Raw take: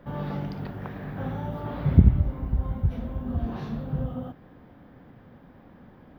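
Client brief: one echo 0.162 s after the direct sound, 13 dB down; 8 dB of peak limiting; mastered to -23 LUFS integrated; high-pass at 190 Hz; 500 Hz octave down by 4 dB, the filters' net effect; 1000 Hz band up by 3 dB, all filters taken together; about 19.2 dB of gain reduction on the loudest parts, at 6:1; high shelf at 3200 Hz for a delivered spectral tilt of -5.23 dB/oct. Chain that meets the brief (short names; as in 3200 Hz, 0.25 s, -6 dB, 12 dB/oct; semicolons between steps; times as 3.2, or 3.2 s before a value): HPF 190 Hz; bell 500 Hz -6.5 dB; bell 1000 Hz +6.5 dB; high shelf 3200 Hz -5.5 dB; compressor 6:1, threshold -38 dBFS; limiter -34.5 dBFS; echo 0.162 s -13 dB; gain +22 dB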